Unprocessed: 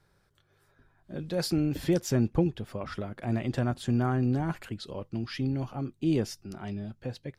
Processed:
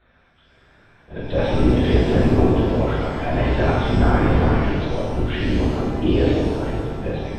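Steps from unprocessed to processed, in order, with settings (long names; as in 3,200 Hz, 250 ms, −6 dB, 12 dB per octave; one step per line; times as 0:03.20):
low-shelf EQ 310 Hz −7.5 dB
on a send: feedback echo with a low-pass in the loop 188 ms, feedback 72%, low-pass 830 Hz, level −6.5 dB
on the sum: linear-prediction vocoder at 8 kHz whisper
in parallel at −1.5 dB: output level in coarse steps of 12 dB
on the sum: reverb with rising layers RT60 1.3 s, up +7 semitones, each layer −8 dB, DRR −5 dB
level +5 dB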